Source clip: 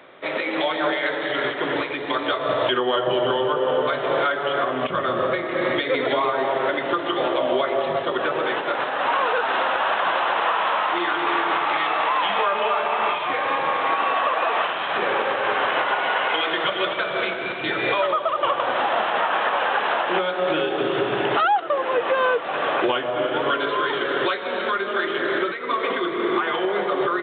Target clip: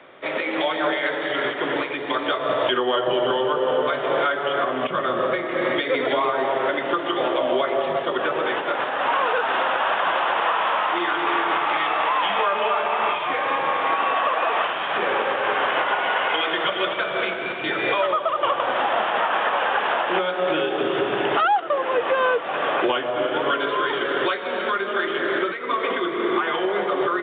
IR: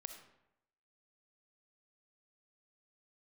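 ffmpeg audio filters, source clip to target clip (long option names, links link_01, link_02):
-filter_complex "[0:a]acrossover=split=130|590|1200[link_01][link_02][link_03][link_04];[link_01]acompressor=threshold=-57dB:ratio=6[link_05];[link_05][link_02][link_03][link_04]amix=inputs=4:normalize=0" -ar 8000 -c:a pcm_alaw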